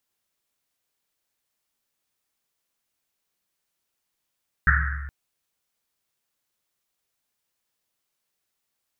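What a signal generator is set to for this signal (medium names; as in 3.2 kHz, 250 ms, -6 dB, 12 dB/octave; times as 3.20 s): Risset drum length 0.42 s, pitch 70 Hz, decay 1.86 s, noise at 1.6 kHz, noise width 560 Hz, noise 45%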